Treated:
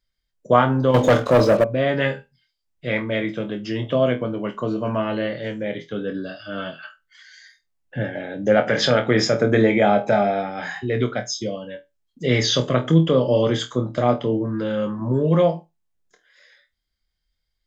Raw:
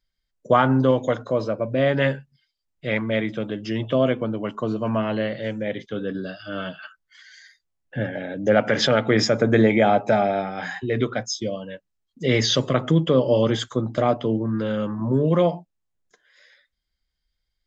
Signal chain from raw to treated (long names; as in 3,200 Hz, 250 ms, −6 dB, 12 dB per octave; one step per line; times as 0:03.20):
flutter between parallel walls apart 4.2 metres, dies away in 0.2 s
0:00.94–0:01.64: leveller curve on the samples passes 3